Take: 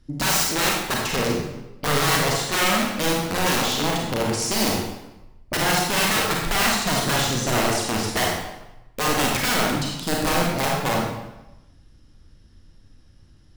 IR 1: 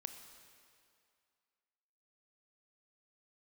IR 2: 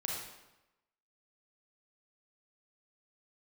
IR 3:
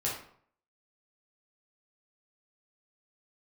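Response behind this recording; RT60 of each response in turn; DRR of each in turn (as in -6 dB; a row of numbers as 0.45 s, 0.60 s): 2; 2.3 s, 1.0 s, 0.60 s; 7.0 dB, -2.5 dB, -5.5 dB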